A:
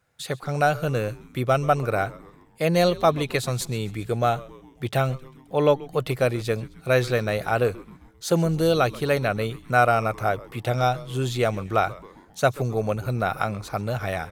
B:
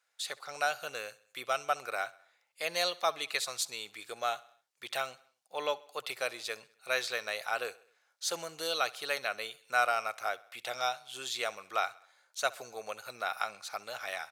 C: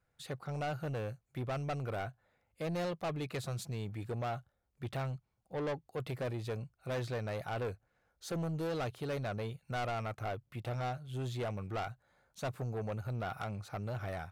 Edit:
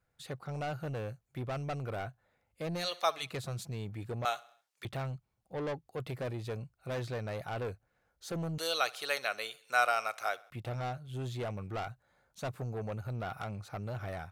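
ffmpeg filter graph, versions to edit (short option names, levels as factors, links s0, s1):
-filter_complex "[1:a]asplit=3[s0][s1][s2];[2:a]asplit=4[s3][s4][s5][s6];[s3]atrim=end=2.92[s7];[s0]atrim=start=2.76:end=3.34[s8];[s4]atrim=start=3.18:end=4.252[s9];[s1]atrim=start=4.248:end=4.852[s10];[s5]atrim=start=4.848:end=8.582[s11];[s2]atrim=start=8.578:end=10.502[s12];[s6]atrim=start=10.498[s13];[s7][s8]acrossfade=d=0.16:c1=tri:c2=tri[s14];[s14][s9]acrossfade=d=0.16:c1=tri:c2=tri[s15];[s15][s10]acrossfade=d=0.004:c1=hsin:c2=hsin[s16];[s16][s11]acrossfade=d=0.004:c1=hsin:c2=hsin[s17];[s17][s12]acrossfade=d=0.004:c1=hsin:c2=hsin[s18];[s18][s13]acrossfade=d=0.004:c1=hsin:c2=hsin"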